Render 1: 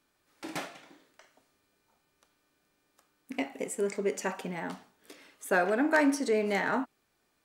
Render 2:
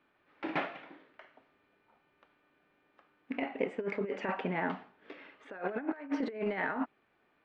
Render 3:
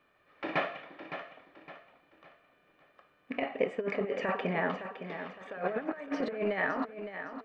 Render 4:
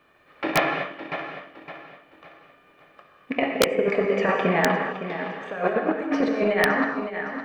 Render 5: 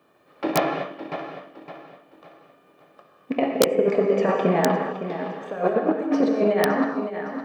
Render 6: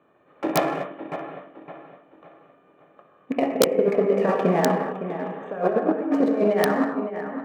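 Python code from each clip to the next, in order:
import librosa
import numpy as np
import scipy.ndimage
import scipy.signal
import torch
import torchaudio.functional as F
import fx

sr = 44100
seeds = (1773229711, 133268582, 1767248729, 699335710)

y1 = scipy.signal.sosfilt(scipy.signal.butter(4, 2800.0, 'lowpass', fs=sr, output='sos'), x)
y1 = fx.low_shelf(y1, sr, hz=110.0, db=-11.0)
y1 = fx.over_compress(y1, sr, threshold_db=-33.0, ratio=-0.5)
y2 = y1 + 0.41 * np.pad(y1, (int(1.7 * sr / 1000.0), 0))[:len(y1)]
y2 = fx.echo_feedback(y2, sr, ms=562, feedback_pct=37, wet_db=-10)
y2 = y2 * 10.0 ** (2.5 / 20.0)
y3 = fx.transient(y2, sr, attack_db=1, sustain_db=-4)
y3 = fx.rev_gated(y3, sr, seeds[0], gate_ms=270, shape='flat', drr_db=2.5)
y3 = (np.mod(10.0 ** (16.5 / 20.0) * y3 + 1.0, 2.0) - 1.0) / 10.0 ** (16.5 / 20.0)
y3 = y3 * 10.0 ** (8.5 / 20.0)
y4 = scipy.signal.sosfilt(scipy.signal.butter(2, 140.0, 'highpass', fs=sr, output='sos'), y3)
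y4 = fx.peak_eq(y4, sr, hz=2100.0, db=-11.5, octaves=1.6)
y4 = y4 * 10.0 ** (3.5 / 20.0)
y5 = fx.wiener(y4, sr, points=9)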